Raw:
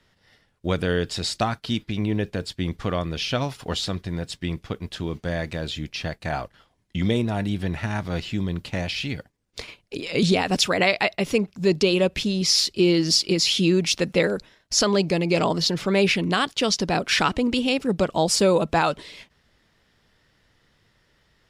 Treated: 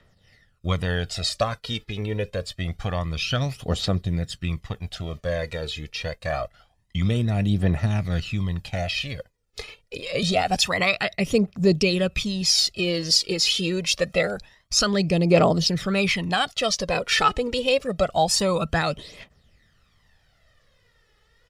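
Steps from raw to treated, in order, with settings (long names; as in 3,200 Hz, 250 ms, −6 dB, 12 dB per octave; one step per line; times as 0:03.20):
comb filter 1.6 ms, depth 37%
phase shifter 0.26 Hz, delay 2.4 ms, feedback 60%
level −2.5 dB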